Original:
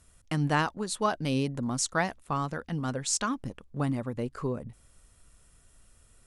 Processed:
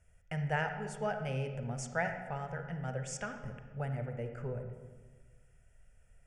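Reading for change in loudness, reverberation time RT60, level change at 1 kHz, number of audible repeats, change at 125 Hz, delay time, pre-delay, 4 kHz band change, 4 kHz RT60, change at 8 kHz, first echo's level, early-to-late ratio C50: −7.5 dB, 1.4 s, −8.0 dB, no echo audible, −4.5 dB, no echo audible, 32 ms, −14.5 dB, 1.0 s, −14.0 dB, no echo audible, 6.5 dB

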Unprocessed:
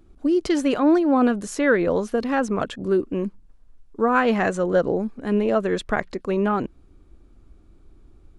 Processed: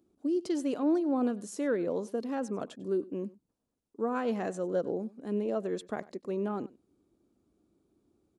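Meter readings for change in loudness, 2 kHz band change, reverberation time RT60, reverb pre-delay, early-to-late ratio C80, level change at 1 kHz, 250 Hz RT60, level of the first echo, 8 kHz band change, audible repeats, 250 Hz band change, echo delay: −10.5 dB, −18.5 dB, no reverb audible, no reverb audible, no reverb audible, −14.0 dB, no reverb audible, −20.5 dB, −9.5 dB, 1, −10.0 dB, 97 ms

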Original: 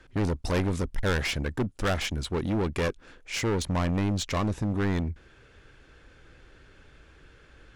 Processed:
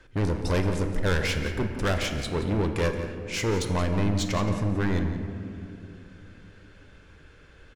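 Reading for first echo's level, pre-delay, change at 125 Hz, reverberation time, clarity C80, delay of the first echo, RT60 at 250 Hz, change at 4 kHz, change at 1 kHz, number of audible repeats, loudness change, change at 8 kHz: −13.0 dB, 7 ms, +2.5 dB, 2.7 s, 7.0 dB, 174 ms, 3.7 s, +1.0 dB, +1.0 dB, 1, +1.5 dB, +1.0 dB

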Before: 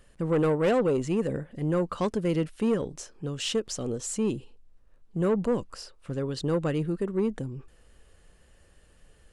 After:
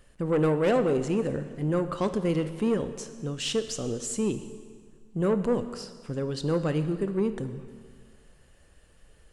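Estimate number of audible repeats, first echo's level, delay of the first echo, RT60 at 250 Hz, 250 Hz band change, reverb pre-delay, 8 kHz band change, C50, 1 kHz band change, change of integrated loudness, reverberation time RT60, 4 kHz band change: no echo audible, no echo audible, no echo audible, 1.8 s, +0.5 dB, 7 ms, +0.5 dB, 11.0 dB, +0.5 dB, +0.5 dB, 1.8 s, +0.5 dB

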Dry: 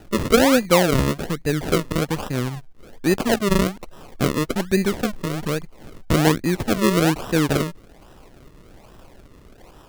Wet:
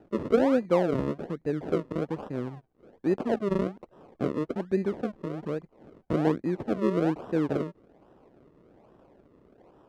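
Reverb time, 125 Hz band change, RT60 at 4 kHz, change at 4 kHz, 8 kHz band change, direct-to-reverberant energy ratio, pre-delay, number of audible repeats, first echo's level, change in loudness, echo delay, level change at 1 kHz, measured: no reverb audible, −11.0 dB, no reverb audible, −22.0 dB, below −25 dB, no reverb audible, no reverb audible, no echo audible, no echo audible, −8.0 dB, no echo audible, −10.5 dB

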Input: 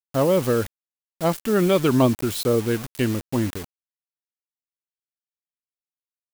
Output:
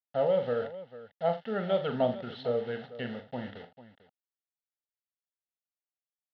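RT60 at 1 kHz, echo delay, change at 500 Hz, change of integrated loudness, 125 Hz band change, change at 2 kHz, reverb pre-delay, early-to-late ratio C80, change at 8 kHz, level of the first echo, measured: no reverb audible, 41 ms, −7.0 dB, −10.0 dB, −16.0 dB, −10.0 dB, no reverb audible, no reverb audible, below −40 dB, −8.5 dB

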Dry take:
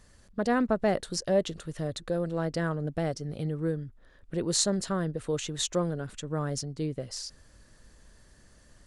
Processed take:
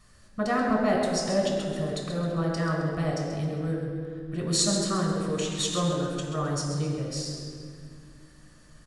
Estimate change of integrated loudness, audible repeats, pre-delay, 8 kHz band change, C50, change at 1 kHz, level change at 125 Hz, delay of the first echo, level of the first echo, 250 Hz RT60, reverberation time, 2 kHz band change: +2.5 dB, 1, 3 ms, +2.5 dB, 1.5 dB, +4.5 dB, +4.0 dB, 133 ms, −9.0 dB, 3.2 s, 2.2 s, +3.5 dB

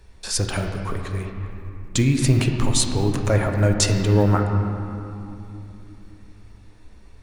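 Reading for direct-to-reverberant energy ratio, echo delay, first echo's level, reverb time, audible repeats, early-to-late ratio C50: 3.0 dB, no echo audible, no echo audible, 2.9 s, no echo audible, 4.5 dB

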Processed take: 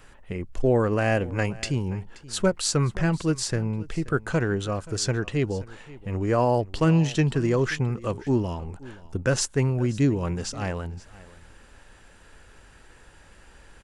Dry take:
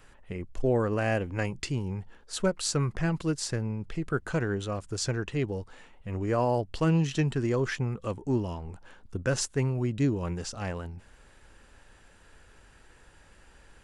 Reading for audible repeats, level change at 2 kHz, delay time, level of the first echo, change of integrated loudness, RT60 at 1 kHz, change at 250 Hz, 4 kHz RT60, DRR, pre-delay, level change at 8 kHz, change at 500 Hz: 1, +4.5 dB, 528 ms, −20.0 dB, +4.5 dB, no reverb audible, +4.5 dB, no reverb audible, no reverb audible, no reverb audible, +4.5 dB, +4.5 dB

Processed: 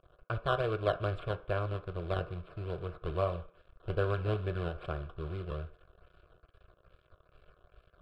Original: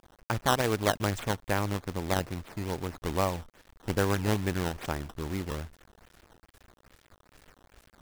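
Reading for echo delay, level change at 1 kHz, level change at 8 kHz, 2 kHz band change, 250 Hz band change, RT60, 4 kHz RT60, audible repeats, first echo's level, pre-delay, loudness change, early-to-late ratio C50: no echo audible, −6.5 dB, below −30 dB, −7.0 dB, −10.0 dB, 0.45 s, 0.55 s, no echo audible, no echo audible, 3 ms, −4.5 dB, 16.0 dB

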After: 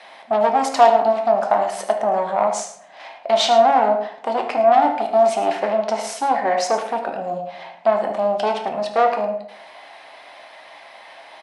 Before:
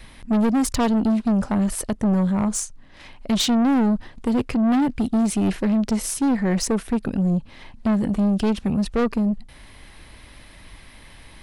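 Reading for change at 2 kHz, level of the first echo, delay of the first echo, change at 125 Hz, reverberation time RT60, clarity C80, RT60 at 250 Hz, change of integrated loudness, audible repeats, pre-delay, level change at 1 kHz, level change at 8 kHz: +5.5 dB, −13.5 dB, 75 ms, below −15 dB, 0.70 s, 9.5 dB, 0.85 s, +2.5 dB, 1, 5 ms, +14.5 dB, −3.5 dB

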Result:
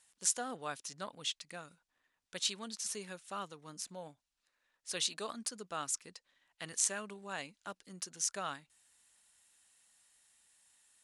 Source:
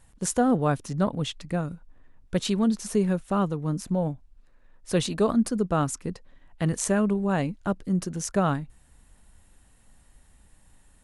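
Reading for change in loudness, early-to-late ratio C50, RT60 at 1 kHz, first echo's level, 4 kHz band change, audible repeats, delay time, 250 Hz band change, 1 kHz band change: −12.0 dB, no reverb audible, no reverb audible, no echo audible, −1.5 dB, no echo audible, no echo audible, −26.0 dB, −13.0 dB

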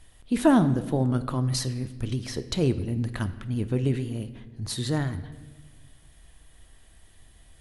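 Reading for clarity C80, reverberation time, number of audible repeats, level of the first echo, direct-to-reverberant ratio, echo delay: 15.0 dB, 1.3 s, no echo audible, no echo audible, 11.0 dB, no echo audible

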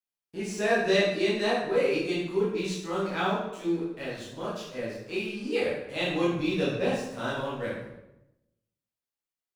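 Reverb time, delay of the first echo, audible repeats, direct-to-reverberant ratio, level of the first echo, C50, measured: 0.90 s, no echo audible, no echo audible, −8.5 dB, no echo audible, 1.5 dB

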